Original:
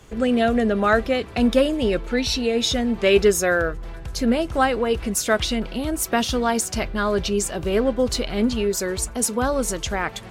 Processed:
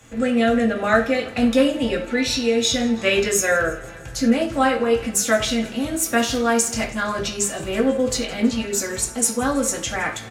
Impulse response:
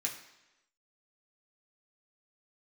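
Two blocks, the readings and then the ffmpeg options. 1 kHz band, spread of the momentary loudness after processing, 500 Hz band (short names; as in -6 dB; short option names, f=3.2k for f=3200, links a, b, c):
0.0 dB, 6 LU, -0.5 dB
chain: -filter_complex "[0:a]aecho=1:1:163|326|489|652|815:0.1|0.06|0.036|0.0216|0.013[a];[1:a]atrim=start_sample=2205,afade=t=out:st=0.16:d=0.01,atrim=end_sample=7497[b];[a][b]afir=irnorm=-1:irlink=0"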